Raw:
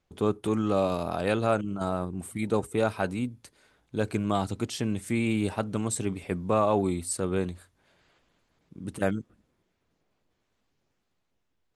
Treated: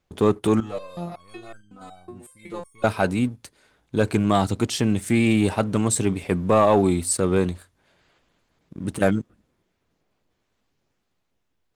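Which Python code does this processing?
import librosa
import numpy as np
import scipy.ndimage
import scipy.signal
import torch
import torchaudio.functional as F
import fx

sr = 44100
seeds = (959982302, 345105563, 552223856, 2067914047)

y = fx.leveller(x, sr, passes=1)
y = fx.resonator_held(y, sr, hz=5.4, low_hz=120.0, high_hz=1600.0, at=(0.6, 2.84))
y = y * 10.0 ** (4.5 / 20.0)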